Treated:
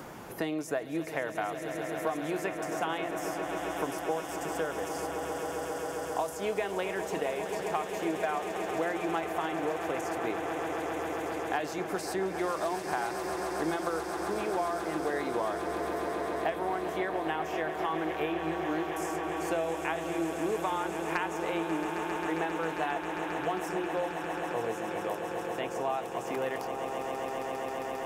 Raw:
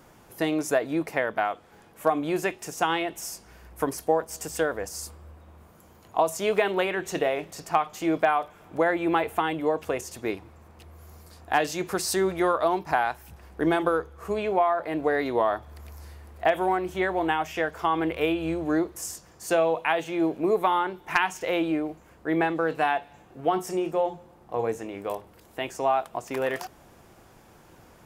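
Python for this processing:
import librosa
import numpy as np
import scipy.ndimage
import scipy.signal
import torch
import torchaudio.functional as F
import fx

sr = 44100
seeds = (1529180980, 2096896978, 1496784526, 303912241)

y = fx.echo_swell(x, sr, ms=134, loudest=8, wet_db=-13.0)
y = fx.band_squash(y, sr, depth_pct=70)
y = F.gain(torch.from_numpy(y), -8.5).numpy()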